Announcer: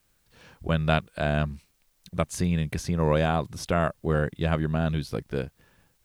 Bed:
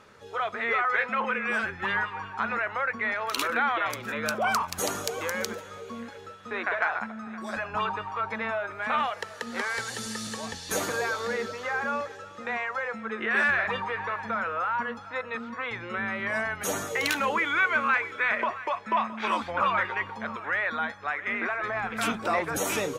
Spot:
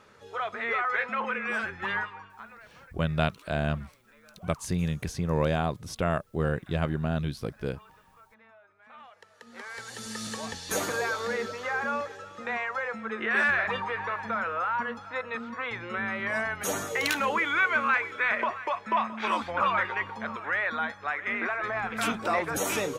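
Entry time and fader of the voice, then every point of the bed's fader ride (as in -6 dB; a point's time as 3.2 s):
2.30 s, -3.0 dB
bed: 1.98 s -2.5 dB
2.74 s -26.5 dB
8.81 s -26.5 dB
10.25 s -0.5 dB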